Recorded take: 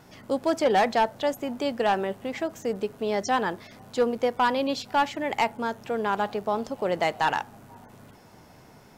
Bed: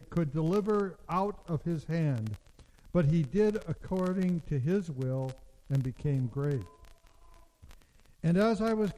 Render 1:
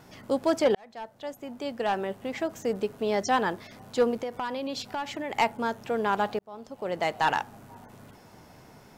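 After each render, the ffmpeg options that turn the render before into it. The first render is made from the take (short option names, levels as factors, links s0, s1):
-filter_complex "[0:a]asettb=1/sr,asplit=3[s0][s1][s2];[s0]atrim=end=4.174[s3];[s1]atrim=start=4.17:end=5.35,asetpts=PTS-STARTPTS,afade=t=in:d=0.004:c=qsin,afade=t=out:st=1.176:d=0.004:c=qsin,acompressor=threshold=0.0355:ratio=6:attack=3.2:release=140:knee=1:detection=peak[s4];[s2]atrim=start=5.346[s5];[s3][s4]acrossfade=d=0.004:c1=hsin:c2=qsin[s6];[s6][s5]acrossfade=d=0.004:c1=qsin:c2=hsin,asplit=3[s7][s8][s9];[s7]atrim=end=0.75,asetpts=PTS-STARTPTS,afade=t=out:st=0.746:d=0.004:c=hsin[s10];[s8]atrim=start=0.75:end=6.39,asetpts=PTS-STARTPTS,afade=t=in:d=1.82,afade=t=out:st=5.636:d=0.004:c=hsin[s11];[s9]atrim=start=6.39,asetpts=PTS-STARTPTS,afade=t=in:d=0.91[s12];[s10][s11][s12]concat=n=3:v=0:a=1"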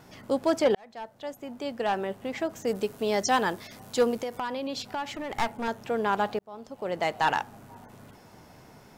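-filter_complex "[0:a]asettb=1/sr,asplit=3[s0][s1][s2];[s0]atrim=end=2.674[s3];[s1]atrim=start=2.67:end=4.4,asetpts=PTS-STARTPTS,afade=t=in:d=0.004:c=qsin,afade=t=out:st=1.726:d=0.004:c=qsin,highshelf=f=4600:g=9.5[s4];[s2]atrim=start=4.396[s5];[s3][s4]acrossfade=d=0.004:c1=hsin:c2=qsin[s6];[s6][s5]acrossfade=d=0.004:c1=qsin:c2=hsin,asettb=1/sr,asplit=3[s7][s8][s9];[s7]atrim=end=5.044[s10];[s8]atrim=start=5.04:end=5.68,asetpts=PTS-STARTPTS,afade=t=in:d=0.004:c=qsin,afade=t=out:st=0.636:d=0.004:c=qsin,aeval=exprs='clip(val(0),-1,0.0224)':c=same[s11];[s9]atrim=start=5.676[s12];[s10][s11]acrossfade=d=0.004:c1=hsin:c2=qsin[s13];[s13][s12]acrossfade=d=0.004:c1=qsin:c2=hsin"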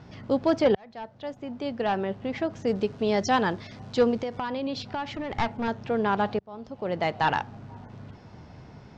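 -af "lowpass=f=5300:w=0.5412,lowpass=f=5300:w=1.3066,equalizer=f=86:t=o:w=2.5:g=11"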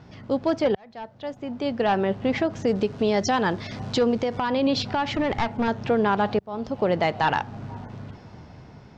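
-af "dynaudnorm=f=330:g=11:m=3.98,alimiter=limit=0.224:level=0:latency=1:release=266"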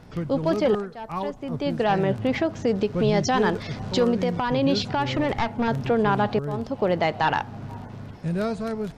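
-filter_complex "[1:a]volume=1[s0];[0:a][s0]amix=inputs=2:normalize=0"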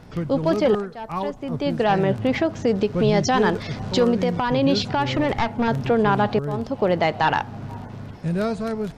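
-af "volume=1.33"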